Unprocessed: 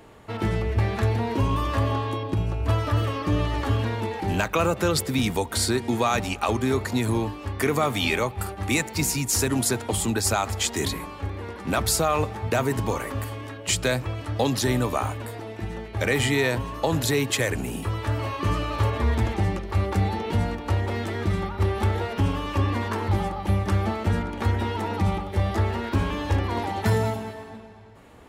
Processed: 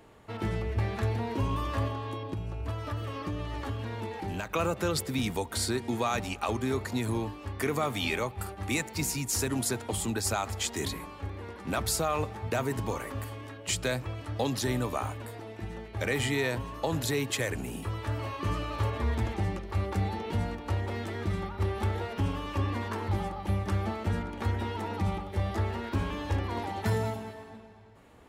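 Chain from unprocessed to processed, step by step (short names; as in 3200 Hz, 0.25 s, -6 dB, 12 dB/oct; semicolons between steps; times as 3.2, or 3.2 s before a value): 1.87–4.5 compressor 4:1, threshold -25 dBFS, peak gain reduction 7 dB; gain -6.5 dB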